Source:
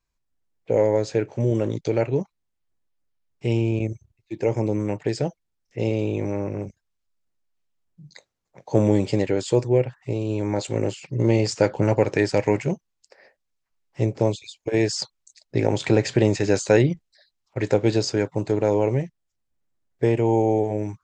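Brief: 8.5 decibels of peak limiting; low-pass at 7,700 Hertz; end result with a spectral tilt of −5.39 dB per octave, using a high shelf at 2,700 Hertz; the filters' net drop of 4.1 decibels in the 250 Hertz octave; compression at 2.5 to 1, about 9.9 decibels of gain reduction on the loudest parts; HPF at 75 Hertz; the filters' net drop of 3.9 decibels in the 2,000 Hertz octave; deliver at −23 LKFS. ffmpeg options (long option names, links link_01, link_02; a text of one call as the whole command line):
ffmpeg -i in.wav -af "highpass=75,lowpass=7700,equalizer=frequency=250:width_type=o:gain=-6,equalizer=frequency=2000:width_type=o:gain=-7,highshelf=frequency=2700:gain=5,acompressor=threshold=-31dB:ratio=2.5,volume=12.5dB,alimiter=limit=-11dB:level=0:latency=1" out.wav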